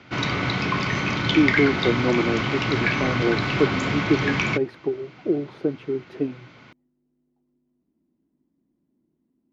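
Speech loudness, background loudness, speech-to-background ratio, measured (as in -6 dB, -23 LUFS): -25.5 LUFS, -23.5 LUFS, -2.0 dB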